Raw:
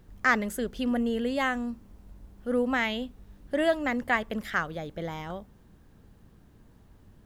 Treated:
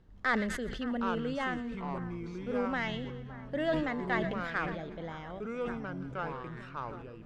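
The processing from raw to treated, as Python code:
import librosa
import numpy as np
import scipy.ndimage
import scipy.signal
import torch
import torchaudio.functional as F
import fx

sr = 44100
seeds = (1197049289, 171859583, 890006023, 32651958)

p1 = fx.tracing_dist(x, sr, depth_ms=0.038)
p2 = fx.notch(p1, sr, hz=2400.0, q=15.0)
p3 = p2 + fx.echo_split(p2, sr, split_hz=1700.0, low_ms=568, high_ms=120, feedback_pct=52, wet_db=-15, dry=0)
p4 = fx.echo_pitch(p3, sr, ms=685, semitones=-5, count=2, db_per_echo=-6.0)
p5 = scipy.signal.sosfilt(scipy.signal.butter(2, 4800.0, 'lowpass', fs=sr, output='sos'), p4)
p6 = fx.sustainer(p5, sr, db_per_s=39.0)
y = p6 * 10.0 ** (-7.0 / 20.0)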